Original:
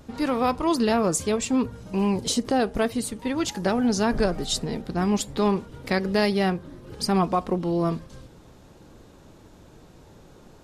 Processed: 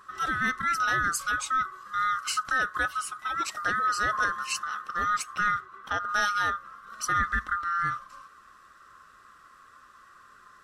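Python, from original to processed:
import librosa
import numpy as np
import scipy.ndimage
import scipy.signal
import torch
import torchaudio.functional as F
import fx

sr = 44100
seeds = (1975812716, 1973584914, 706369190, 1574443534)

y = fx.band_swap(x, sr, width_hz=1000)
y = fx.high_shelf(y, sr, hz=3700.0, db=-12.0, at=(5.59, 6.08), fade=0.02)
y = y * librosa.db_to_amplitude(-4.5)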